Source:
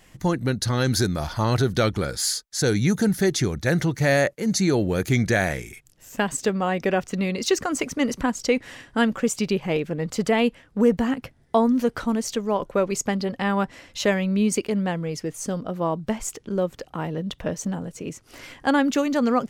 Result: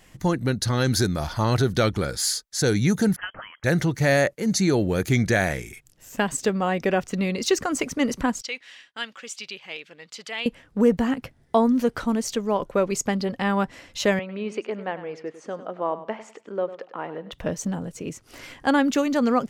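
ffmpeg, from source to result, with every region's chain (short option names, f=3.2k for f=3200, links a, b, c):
-filter_complex "[0:a]asettb=1/sr,asplit=3[a][b][c];[a]atrim=end=3.164[d];[b]atrim=start=3.16:end=3.64,asetpts=PTS-STARTPTS,afade=t=in:d=0.004:c=qsin,afade=t=out:st=0.476:d=0.004:c=qsin,highpass=1.3k,lowpass=f=2.9k:t=q:w=0.5098,lowpass=f=2.9k:t=q:w=0.6013,lowpass=f=2.9k:t=q:w=0.9,lowpass=f=2.9k:t=q:w=2.563,afreqshift=-3400[e];[c]atrim=start=3.636[f];[d][e]acrossfade=d=0.004:c1=hsin:c2=qsin[g];[g][f]acrossfade=d=0.004:c1=qsin:c2=hsin,asettb=1/sr,asplit=3[h][i][j];[h]atrim=end=8.414[k];[i]atrim=start=8.41:end=10.46,asetpts=PTS-STARTPTS,afade=t=in:d=0.004:c=qsin,afade=t=out:st=2.046:d=0.004:c=qsin,bandpass=f=3.4k:t=q:w=1.2,agate=range=-33dB:threshold=-55dB:ratio=3:release=100:detection=peak[l];[j]atrim=start=10.456[m];[k][l]acrossfade=d=0.004:c1=hsin:c2=qsin[n];[n][m]acrossfade=d=0.004:c1=qsin:c2=hsin,asettb=1/sr,asplit=3[o][p][q];[o]atrim=end=14.194[r];[p]atrim=start=14.19:end=17.32,asetpts=PTS-STARTPTS,afade=t=in:d=0.004:c=qsin,afade=t=out:st=3.126:d=0.004:c=qsin,highpass=420,lowpass=2.3k,aecho=1:1:100|200|300:0.211|0.055|0.0143,atrim=end_sample=138033[s];[q]atrim=start=17.316[t];[r][s]acrossfade=d=0.004:c1=hsin:c2=qsin[u];[u][t]acrossfade=d=0.004:c1=qsin:c2=hsin"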